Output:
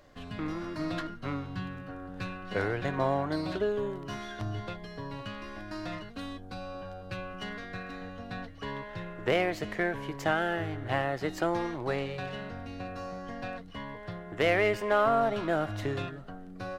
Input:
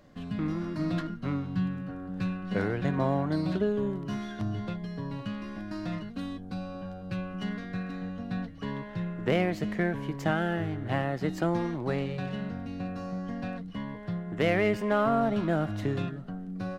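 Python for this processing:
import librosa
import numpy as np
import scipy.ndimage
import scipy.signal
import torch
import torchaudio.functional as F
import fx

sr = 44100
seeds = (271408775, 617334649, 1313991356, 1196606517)

y = fx.peak_eq(x, sr, hz=190.0, db=-13.5, octaves=1.1)
y = y * 10.0 ** (2.5 / 20.0)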